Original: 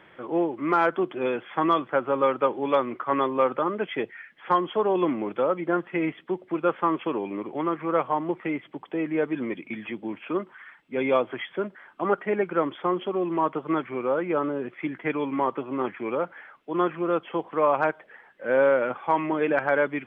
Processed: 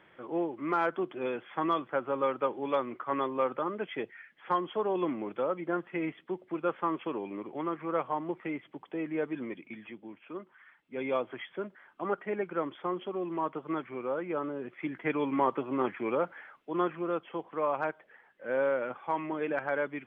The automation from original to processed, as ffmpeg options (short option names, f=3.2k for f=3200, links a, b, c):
-af "volume=6dB,afade=t=out:st=9.28:d=0.93:silence=0.398107,afade=t=in:st=10.21:d=1.02:silence=0.446684,afade=t=in:st=14.57:d=0.75:silence=0.501187,afade=t=out:st=16.1:d=1.18:silence=0.473151"